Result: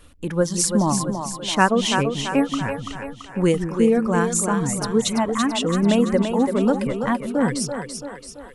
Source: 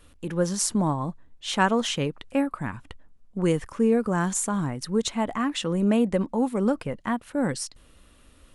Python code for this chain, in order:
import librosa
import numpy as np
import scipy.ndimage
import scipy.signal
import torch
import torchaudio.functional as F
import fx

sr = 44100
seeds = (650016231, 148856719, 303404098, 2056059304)

y = fx.dereverb_blind(x, sr, rt60_s=1.5)
y = fx.echo_split(y, sr, split_hz=320.0, low_ms=170, high_ms=335, feedback_pct=52, wet_db=-6.0)
y = y * 10.0 ** (5.0 / 20.0)